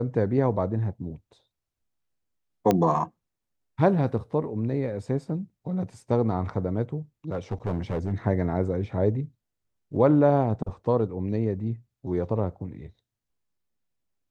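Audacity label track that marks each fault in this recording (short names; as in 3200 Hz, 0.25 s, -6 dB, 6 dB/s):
2.710000	2.710000	pop -9 dBFS
7.320000	8.130000	clipped -22 dBFS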